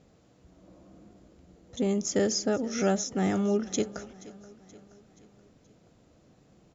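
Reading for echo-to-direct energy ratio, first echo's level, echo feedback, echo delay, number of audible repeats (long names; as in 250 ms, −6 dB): −18.0 dB, −19.5 dB, 52%, 477 ms, 3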